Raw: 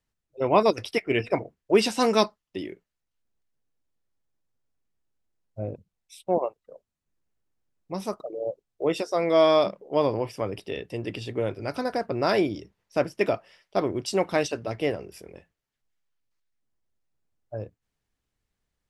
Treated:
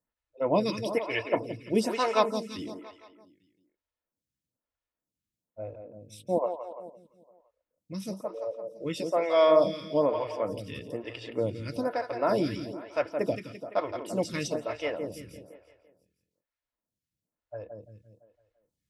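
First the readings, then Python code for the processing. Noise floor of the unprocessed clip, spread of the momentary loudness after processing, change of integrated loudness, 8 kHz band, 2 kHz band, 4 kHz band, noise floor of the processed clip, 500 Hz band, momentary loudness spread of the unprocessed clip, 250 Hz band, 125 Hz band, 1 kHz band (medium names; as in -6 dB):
-84 dBFS, 17 LU, -3.0 dB, no reading, -4.0 dB, -5.5 dB, under -85 dBFS, -3.0 dB, 16 LU, -3.5 dB, -3.5 dB, -3.5 dB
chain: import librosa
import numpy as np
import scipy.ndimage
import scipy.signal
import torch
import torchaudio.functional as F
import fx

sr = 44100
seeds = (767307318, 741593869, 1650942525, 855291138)

y = fx.notch_comb(x, sr, f0_hz=390.0)
y = fx.echo_feedback(y, sr, ms=170, feedback_pct=52, wet_db=-8)
y = fx.stagger_phaser(y, sr, hz=1.1)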